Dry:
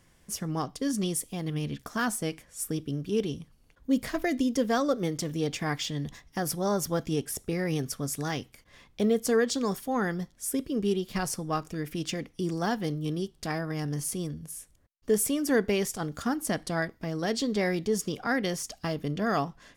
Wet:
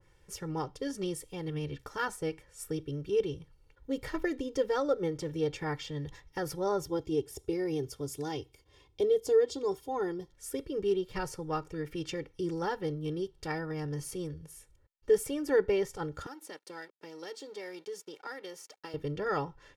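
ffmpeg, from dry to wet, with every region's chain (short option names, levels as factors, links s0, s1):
-filter_complex "[0:a]asettb=1/sr,asplit=3[s0][s1][s2];[s0]atrim=end=6.824[s3];[s1]atrim=start=6.82:end=10.3,asetpts=PTS-STARTPTS,afade=t=in:d=0.004:c=qsin,afade=t=out:st=3.476:d=0.004:c=qsin,highpass=55,equalizer=f=1600:t=o:w=0.91:g=-12.5,aecho=1:1:2.8:0.47,atrim=end_sample=153468[s4];[s2]atrim=start=10.296[s5];[s3][s4]acrossfade=d=0.004:c1=hsin:c2=qsin[s6];[s6][s5]acrossfade=d=0.004:c1=qsin:c2=hsin,asettb=1/sr,asplit=3[s7][s8][s9];[s7]atrim=end=16.264[s10];[s8]atrim=start=16.26:end=18.94,asetpts=PTS-STARTPTS,afade=t=in:d=0.004:c=qsin,afade=t=out:st=2.676:d=0.004:c=qsin,acrossover=split=2600|7000[s11][s12][s13];[s11]acompressor=threshold=0.0126:ratio=4[s14];[s12]acompressor=threshold=0.00501:ratio=4[s15];[s13]acompressor=threshold=0.01:ratio=4[s16];[s14][s15][s16]amix=inputs=3:normalize=0,aeval=exprs='sgn(val(0))*max(abs(val(0))-0.00211,0)':c=same,highpass=f=220:w=0.5412,highpass=f=220:w=1.3066[s17];[s9]atrim=start=18.936[s18];[s10][s17]acrossfade=d=0.004:c1=hsin:c2=qsin[s19];[s19][s18]acrossfade=d=0.004:c1=qsin:c2=hsin,lowpass=f=3500:p=1,aecho=1:1:2.2:0.95,adynamicequalizer=threshold=0.00794:dfrequency=1800:dqfactor=0.7:tfrequency=1800:tqfactor=0.7:attack=5:release=100:ratio=0.375:range=3.5:mode=cutabove:tftype=highshelf,volume=0.596"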